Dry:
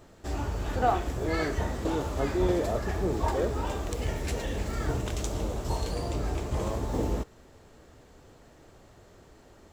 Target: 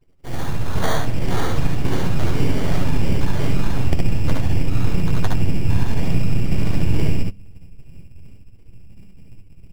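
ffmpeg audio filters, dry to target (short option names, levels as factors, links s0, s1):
-filter_complex "[0:a]afftdn=nr=34:nf=-41,crystalizer=i=7.5:c=0,asubboost=boost=11:cutoff=170,acompressor=threshold=0.178:ratio=10,aeval=exprs='abs(val(0))':c=same,bandreject=f=98.2:t=h:w=4,bandreject=f=196.4:t=h:w=4,acrusher=samples=17:mix=1:aa=0.000001,asplit=2[s0][s1];[s1]aecho=0:1:61|72:0.473|0.668[s2];[s0][s2]amix=inputs=2:normalize=0,adynamicequalizer=threshold=0.00251:dfrequency=7100:dqfactor=0.7:tfrequency=7100:tqfactor=0.7:attack=5:release=100:ratio=0.375:range=2.5:mode=cutabove:tftype=highshelf,volume=1.26"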